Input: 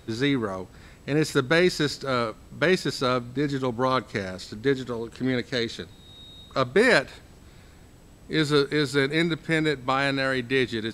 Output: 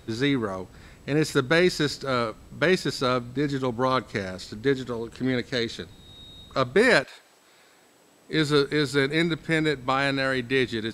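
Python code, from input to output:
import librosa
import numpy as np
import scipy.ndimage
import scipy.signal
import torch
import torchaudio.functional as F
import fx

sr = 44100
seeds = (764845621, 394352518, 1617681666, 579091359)

y = fx.highpass(x, sr, hz=fx.line((7.03, 650.0), (8.32, 310.0)), slope=12, at=(7.03, 8.32), fade=0.02)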